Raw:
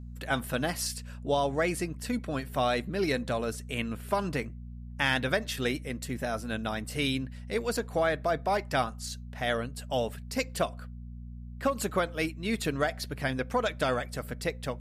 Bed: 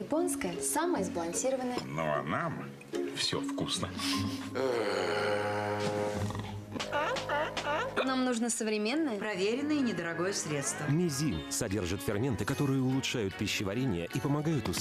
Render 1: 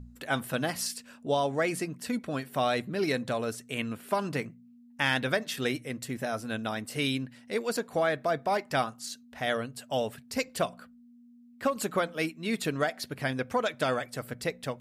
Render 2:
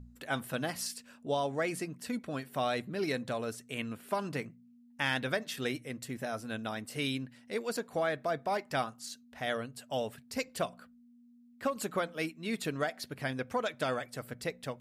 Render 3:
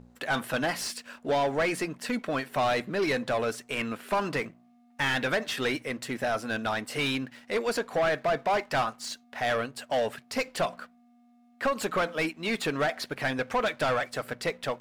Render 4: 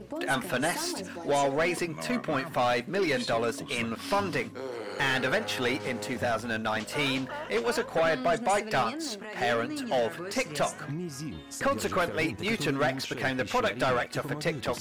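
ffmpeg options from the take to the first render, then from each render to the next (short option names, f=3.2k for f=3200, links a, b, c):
-af "bandreject=f=60:t=h:w=4,bandreject=f=120:t=h:w=4,bandreject=f=180:t=h:w=4"
-af "volume=-4.5dB"
-filter_complex "[0:a]asplit=2[a][b];[b]highpass=f=720:p=1,volume=22dB,asoftclip=type=tanh:threshold=-17dB[c];[a][c]amix=inputs=2:normalize=0,lowpass=f=2.6k:p=1,volume=-6dB,aeval=exprs='sgn(val(0))*max(abs(val(0))-0.0015,0)':c=same"
-filter_complex "[1:a]volume=-6dB[a];[0:a][a]amix=inputs=2:normalize=0"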